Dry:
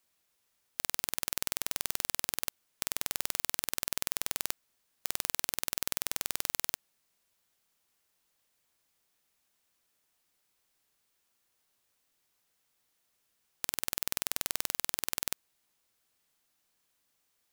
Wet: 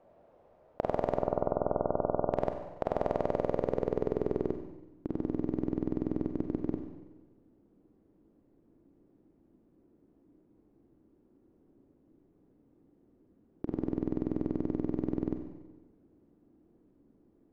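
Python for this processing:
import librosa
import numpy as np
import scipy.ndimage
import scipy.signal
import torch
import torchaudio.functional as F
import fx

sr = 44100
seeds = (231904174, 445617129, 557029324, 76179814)

p1 = fx.auto_swell(x, sr, attack_ms=192.0, at=(6.29, 6.72))
p2 = fx.over_compress(p1, sr, threshold_db=-41.0, ratio=-0.5)
p3 = p1 + (p2 * librosa.db_to_amplitude(1.0))
p4 = fx.brickwall_bandstop(p3, sr, low_hz=1500.0, high_hz=12000.0, at=(1.16, 2.3))
p5 = fx.rev_schroeder(p4, sr, rt60_s=1.2, comb_ms=32, drr_db=5.0)
p6 = fx.filter_sweep_lowpass(p5, sr, from_hz=620.0, to_hz=310.0, start_s=3.18, end_s=5.05, q=3.6)
y = p6 * librosa.db_to_amplitude(9.0)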